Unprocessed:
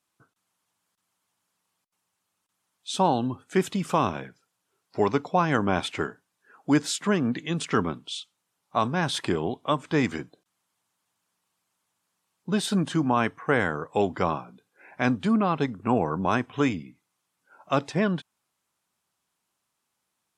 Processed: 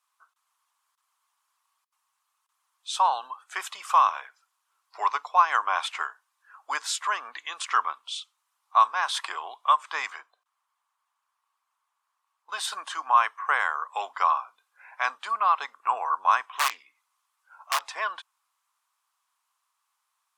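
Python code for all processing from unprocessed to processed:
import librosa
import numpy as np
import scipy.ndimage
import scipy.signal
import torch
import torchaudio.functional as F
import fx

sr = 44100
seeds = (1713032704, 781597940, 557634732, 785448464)

y = fx.chain(x, sr, fx.highpass(hz=370.0, slope=12),
    fx.high_shelf(hz=2700.0, db=-10.0), at=(10.1, 12.49))
y = fx.chain(y, sr, fx.overflow_wrap(gain_db=18.0),
    fx.doppler_dist(depth_ms=0.19), at=(16.48, 17.83))
y = scipy.signal.sosfilt(scipy.signal.butter(4, 830.0, 'highpass', fs=sr, output='sos'), y)
y = fx.peak_eq(y, sr, hz=1100.0, db=10.0, octaves=0.48)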